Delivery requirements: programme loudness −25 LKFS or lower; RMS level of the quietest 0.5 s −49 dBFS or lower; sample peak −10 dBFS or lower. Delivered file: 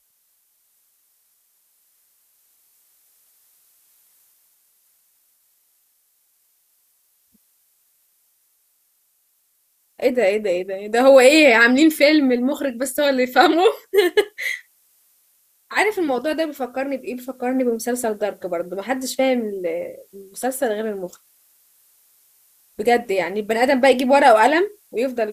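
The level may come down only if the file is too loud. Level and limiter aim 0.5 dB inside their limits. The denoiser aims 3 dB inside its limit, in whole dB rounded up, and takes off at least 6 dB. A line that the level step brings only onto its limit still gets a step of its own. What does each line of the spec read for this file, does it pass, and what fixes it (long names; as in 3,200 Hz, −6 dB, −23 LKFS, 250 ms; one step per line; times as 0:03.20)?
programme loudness −18.0 LKFS: out of spec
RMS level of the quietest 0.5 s −65 dBFS: in spec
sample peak −2.0 dBFS: out of spec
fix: level −7.5 dB
brickwall limiter −10.5 dBFS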